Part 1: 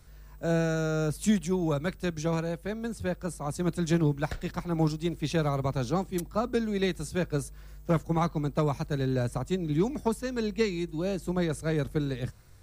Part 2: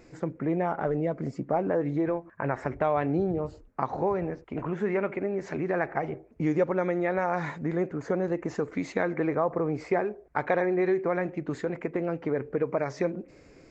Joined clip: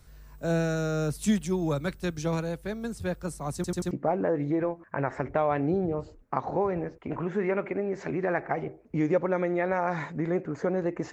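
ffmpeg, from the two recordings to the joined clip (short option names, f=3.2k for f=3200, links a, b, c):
-filter_complex "[0:a]apad=whole_dur=11.12,atrim=end=11.12,asplit=4[a][b][c][d];[a]atrim=end=3.642[e];[b]atrim=start=3.548:end=3.642[f];[c]atrim=start=3.548:end=3.642[g];[d]atrim=start=3.548:end=3.642[h];[1:a]atrim=start=1.368:end=8.58[i];[e][f]acrossfade=d=0.004:c1=hsin:c2=hsin[j];[j][g]acrossfade=d=0.004:c1=hsin:c2=hsin[k];[k][h]acrossfade=d=0.004:c1=hsin:c2=hsin[l];[l][i]acrossfade=d=0.004:c1=hsin:c2=hsin"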